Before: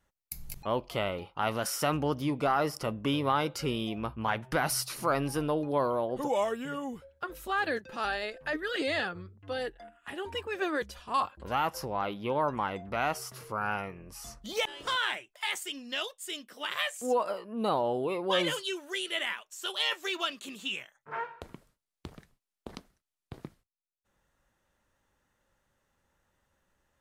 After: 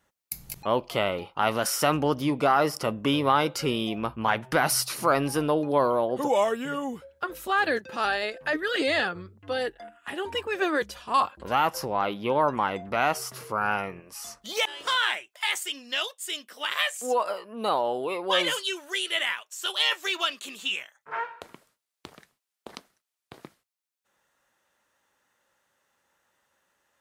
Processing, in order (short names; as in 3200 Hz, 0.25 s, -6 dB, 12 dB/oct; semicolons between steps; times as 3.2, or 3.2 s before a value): HPF 160 Hz 6 dB/oct, from 14 s 650 Hz; gain +6 dB